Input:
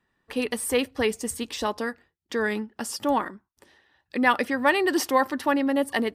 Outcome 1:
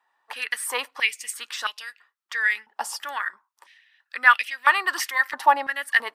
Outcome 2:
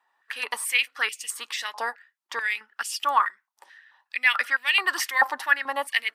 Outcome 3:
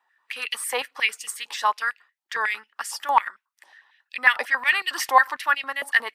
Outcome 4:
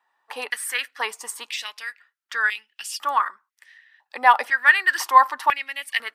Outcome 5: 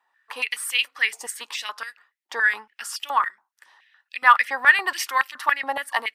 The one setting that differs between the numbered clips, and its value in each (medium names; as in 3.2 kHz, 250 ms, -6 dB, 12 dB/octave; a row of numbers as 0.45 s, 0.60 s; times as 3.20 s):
step-sequenced high-pass, rate: 3 Hz, 4.6 Hz, 11 Hz, 2 Hz, 7.1 Hz